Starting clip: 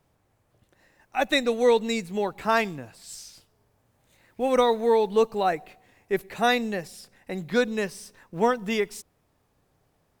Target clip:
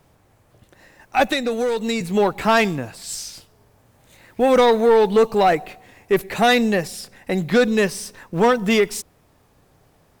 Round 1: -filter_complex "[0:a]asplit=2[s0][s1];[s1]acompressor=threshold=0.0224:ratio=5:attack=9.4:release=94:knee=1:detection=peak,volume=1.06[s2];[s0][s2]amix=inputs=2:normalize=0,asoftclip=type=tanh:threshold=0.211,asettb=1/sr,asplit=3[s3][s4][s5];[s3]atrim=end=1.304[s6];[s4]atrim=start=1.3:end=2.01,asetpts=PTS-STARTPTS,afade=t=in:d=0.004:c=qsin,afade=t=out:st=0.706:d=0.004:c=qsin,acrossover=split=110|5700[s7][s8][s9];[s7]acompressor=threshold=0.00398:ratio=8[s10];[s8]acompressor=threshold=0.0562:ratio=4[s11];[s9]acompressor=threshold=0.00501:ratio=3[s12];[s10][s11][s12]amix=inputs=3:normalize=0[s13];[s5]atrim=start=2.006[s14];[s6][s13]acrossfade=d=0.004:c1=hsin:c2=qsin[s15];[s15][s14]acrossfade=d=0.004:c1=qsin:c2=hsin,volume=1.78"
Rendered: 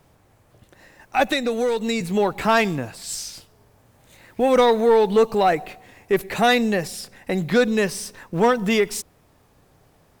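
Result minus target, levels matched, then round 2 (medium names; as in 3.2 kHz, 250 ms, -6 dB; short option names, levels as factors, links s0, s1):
compression: peak gain reduction +9 dB
-filter_complex "[0:a]asplit=2[s0][s1];[s1]acompressor=threshold=0.0794:ratio=5:attack=9.4:release=94:knee=1:detection=peak,volume=1.06[s2];[s0][s2]amix=inputs=2:normalize=0,asoftclip=type=tanh:threshold=0.211,asettb=1/sr,asplit=3[s3][s4][s5];[s3]atrim=end=1.304[s6];[s4]atrim=start=1.3:end=2.01,asetpts=PTS-STARTPTS,afade=t=in:d=0.004:c=qsin,afade=t=out:st=0.706:d=0.004:c=qsin,acrossover=split=110|5700[s7][s8][s9];[s7]acompressor=threshold=0.00398:ratio=8[s10];[s8]acompressor=threshold=0.0562:ratio=4[s11];[s9]acompressor=threshold=0.00501:ratio=3[s12];[s10][s11][s12]amix=inputs=3:normalize=0[s13];[s5]atrim=start=2.006[s14];[s6][s13]acrossfade=d=0.004:c1=hsin:c2=qsin[s15];[s15][s14]acrossfade=d=0.004:c1=qsin:c2=hsin,volume=1.78"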